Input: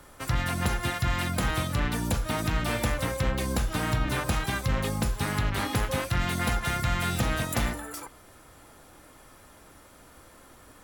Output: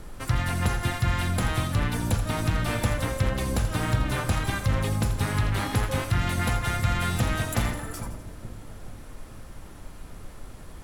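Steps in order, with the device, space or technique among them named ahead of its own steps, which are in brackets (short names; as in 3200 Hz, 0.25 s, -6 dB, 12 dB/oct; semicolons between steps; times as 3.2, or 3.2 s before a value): car interior (bell 100 Hz +7 dB 0.53 oct; high shelf 4600 Hz -5 dB; brown noise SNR 13 dB); LPF 12000 Hz 12 dB/oct; high shelf 9500 Hz +10 dB; split-band echo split 580 Hz, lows 0.433 s, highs 83 ms, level -11 dB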